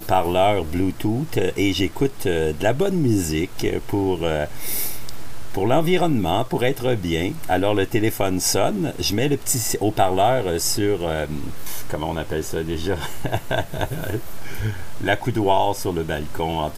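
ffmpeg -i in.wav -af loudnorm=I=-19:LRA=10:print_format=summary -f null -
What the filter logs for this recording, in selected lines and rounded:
Input Integrated:    -22.5 LUFS
Input True Peak:      -3.6 dBTP
Input LRA:             2.8 LU
Input Threshold:     -32.6 LUFS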